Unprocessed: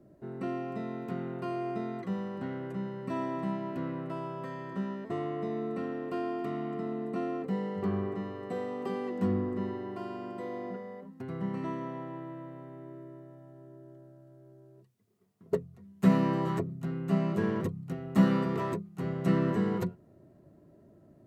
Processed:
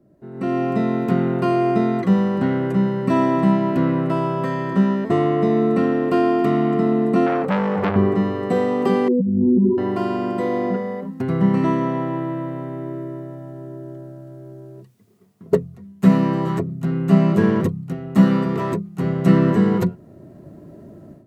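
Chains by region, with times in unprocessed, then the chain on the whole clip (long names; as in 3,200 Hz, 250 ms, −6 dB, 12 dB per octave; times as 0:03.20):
0:07.26–0:07.96: parametric band 560 Hz +3 dB 1.7 octaves + comb filter 1.6 ms, depth 41% + saturating transformer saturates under 1,300 Hz
0:09.08–0:09.78: expanding power law on the bin magnitudes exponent 3.3 + compressor whose output falls as the input rises −34 dBFS
whole clip: parametric band 200 Hz +3 dB 1.3 octaves; automatic gain control gain up to 16.5 dB; level −1 dB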